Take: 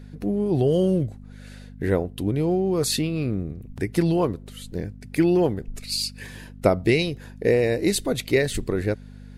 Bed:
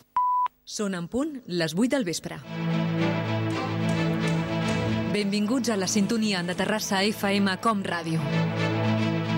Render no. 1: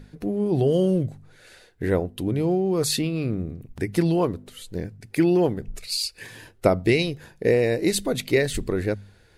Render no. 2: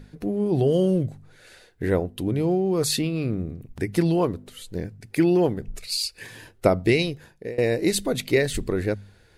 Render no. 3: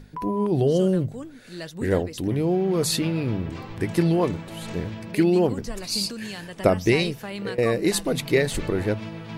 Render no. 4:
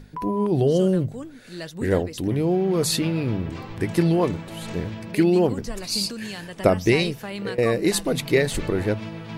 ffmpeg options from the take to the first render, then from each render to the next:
-af "bandreject=f=50:t=h:w=4,bandreject=f=100:t=h:w=4,bandreject=f=150:t=h:w=4,bandreject=f=200:t=h:w=4,bandreject=f=250:t=h:w=4"
-filter_complex "[0:a]asplit=2[a][b];[a]atrim=end=7.58,asetpts=PTS-STARTPTS,afade=t=out:st=7.05:d=0.53:silence=0.0794328[c];[b]atrim=start=7.58,asetpts=PTS-STARTPTS,afade=t=in:d=0.004:c=hsin:silence=0.0794328[d];[c][d]concat=n=2:v=0:a=1"
-filter_complex "[1:a]volume=-10dB[a];[0:a][a]amix=inputs=2:normalize=0"
-af "volume=1dB"

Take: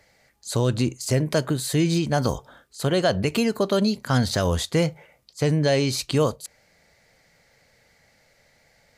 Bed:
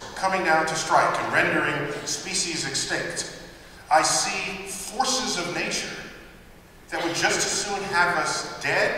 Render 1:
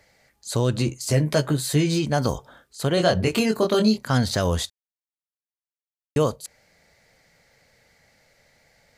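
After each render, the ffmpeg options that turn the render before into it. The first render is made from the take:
-filter_complex "[0:a]asettb=1/sr,asplit=3[a][b][c];[a]atrim=end=0.734[d];[b]atrim=start=0.73:end=2.05,asetpts=PTS-STARTPTS,afade=t=in:d=0.004:c=qsin,afade=t=out:st=1.316:d=0.004:c=qsin,asplit=2[e][f];[f]adelay=14,volume=-6dB[g];[e][g]amix=inputs=2:normalize=0,atrim=end_sample=58212[h];[c]atrim=start=2.046[i];[d][h]acrossfade=d=0.004:c1=hsin:c2=qsin[j];[j][i]acrossfade=d=0.004:c1=qsin:c2=hsin,asettb=1/sr,asplit=3[k][l][m];[k]atrim=end=2.954[n];[l]atrim=start=2.95:end=3.98,asetpts=PTS-STARTPTS,afade=t=in:d=0.004:c=qsin,afade=t=out:st=1.026:d=0.004:c=qsin,asplit=2[o][p];[p]adelay=23,volume=-3dB[q];[o][q]amix=inputs=2:normalize=0,atrim=end_sample=45423[r];[m]atrim=start=3.976[s];[n][r]acrossfade=d=0.004:c1=hsin:c2=qsin[t];[t][s]acrossfade=d=0.004:c1=qsin:c2=hsin,asplit=3[u][v][w];[u]atrim=end=4.7,asetpts=PTS-STARTPTS,afade=t=out:st=4.696:d=0.004:c=hsin[x];[v]atrim=start=4.7:end=6.16,asetpts=PTS-STARTPTS,volume=0[y];[w]atrim=start=6.16,asetpts=PTS-STARTPTS,afade=t=in:d=0.004:c=hsin[z];[x][y][z]concat=n=3:v=0:a=1"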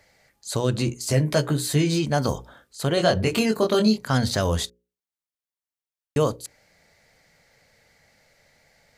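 -af "bandreject=f=60:t=h:w=6,bandreject=f=120:t=h:w=6,bandreject=f=180:t=h:w=6,bandreject=f=240:t=h:w=6,bandreject=f=300:t=h:w=6,bandreject=f=360:t=h:w=6,bandreject=f=420:t=h:w=6,bandreject=f=480:t=h:w=6,bandreject=f=540:t=h:w=6"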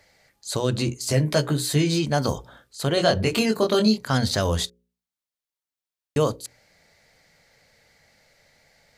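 -af "equalizer=f=4.1k:w=1.5:g=2.5,bandreject=f=60:t=h:w=6,bandreject=f=120:t=h:w=6,bandreject=f=180:t=h:w=6,bandreject=f=240:t=h:w=6"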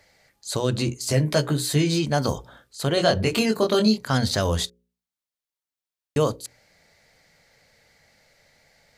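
-af anull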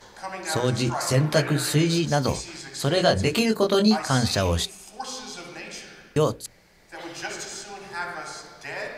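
-filter_complex "[1:a]volume=-11dB[a];[0:a][a]amix=inputs=2:normalize=0"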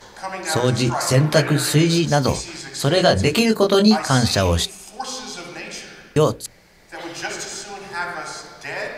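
-af "volume=5dB,alimiter=limit=-3dB:level=0:latency=1"

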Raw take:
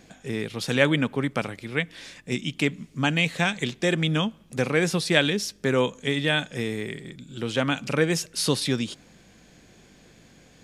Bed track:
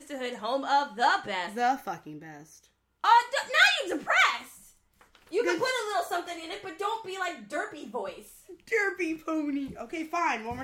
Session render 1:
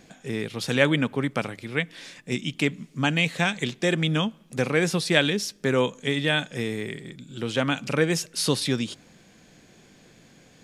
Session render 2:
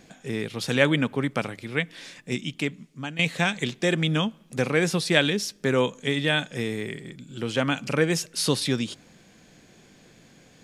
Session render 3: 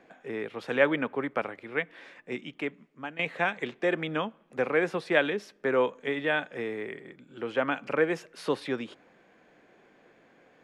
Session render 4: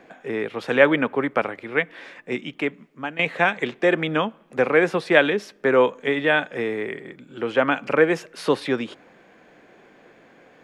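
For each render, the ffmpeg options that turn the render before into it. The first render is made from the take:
-af "bandreject=f=50:t=h:w=4,bandreject=f=100:t=h:w=4"
-filter_complex "[0:a]asettb=1/sr,asplit=3[a][b][c];[a]atrim=end=6.884[d];[b]atrim=start=6.88:end=8.08,asetpts=PTS-STARTPTS,afade=t=in:d=0.004:c=qsin,afade=t=out:st=1.196:d=0.004:c=qsin,bandreject=f=3.7k:w=12[e];[c]atrim=start=8.076[f];[d][e]acrossfade=d=0.004:c1=hsin:c2=qsin[g];[g][f]acrossfade=d=0.004:c1=qsin:c2=hsin,asplit=2[h][i];[h]atrim=end=3.19,asetpts=PTS-STARTPTS,afade=t=out:st=2.23:d=0.96:silence=0.199526[j];[i]atrim=start=3.19,asetpts=PTS-STARTPTS,afade=t=in:d=0.004:c=hsin:silence=0.199526[k];[j][k]concat=n=2:v=0:a=1"
-filter_complex "[0:a]acrossover=split=310 2300:gain=0.126 1 0.0708[a][b][c];[a][b][c]amix=inputs=3:normalize=0"
-af "volume=8dB,alimiter=limit=-2dB:level=0:latency=1"

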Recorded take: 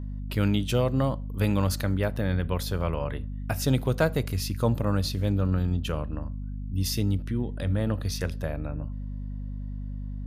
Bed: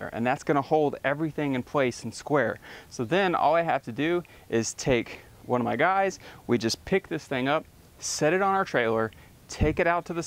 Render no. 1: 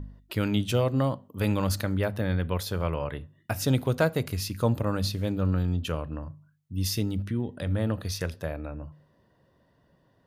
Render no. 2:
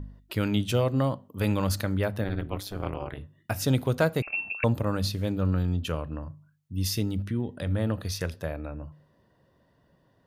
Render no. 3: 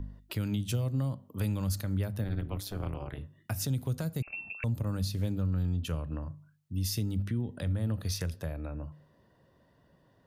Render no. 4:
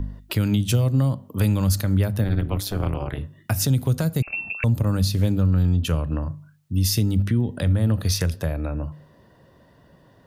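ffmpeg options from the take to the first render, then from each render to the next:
-af "bandreject=f=50:t=h:w=4,bandreject=f=100:t=h:w=4,bandreject=f=150:t=h:w=4,bandreject=f=200:t=h:w=4,bandreject=f=250:t=h:w=4"
-filter_complex "[0:a]asettb=1/sr,asplit=3[a][b][c];[a]atrim=end=2.244[d];[b]atrim=start=2.24:end=3.18,asetpts=PTS-STARTPTS,afade=t=in:d=0.004:c=qsin,afade=t=out:st=0.936:d=0.004:c=qsin,tremolo=f=200:d=0.974[e];[c]atrim=start=3.176[f];[d][e]acrossfade=d=0.004:c1=hsin:c2=qsin[g];[g][f]acrossfade=d=0.004:c1=qsin:c2=hsin,asettb=1/sr,asplit=3[h][i][j];[h]atrim=end=4.224[k];[i]atrim=start=4.22:end=4.64,asetpts=PTS-STARTPTS,afade=t=in:d=0.004:c=qsin,afade=t=out:st=0.416:d=0.004:c=qsin,lowpass=f=2.4k:t=q:w=0.5098,lowpass=f=2.4k:t=q:w=0.6013,lowpass=f=2.4k:t=q:w=0.9,lowpass=f=2.4k:t=q:w=2.563,afreqshift=-2800[l];[j]atrim=start=4.636[m];[k][l]acrossfade=d=0.004:c1=hsin:c2=qsin[n];[n][m]acrossfade=d=0.004:c1=qsin:c2=hsin"
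-filter_complex "[0:a]acrossover=split=210|5100[a][b][c];[b]acompressor=threshold=-39dB:ratio=6[d];[a][d][c]amix=inputs=3:normalize=0,alimiter=limit=-22.5dB:level=0:latency=1:release=155"
-af "volume=11dB"

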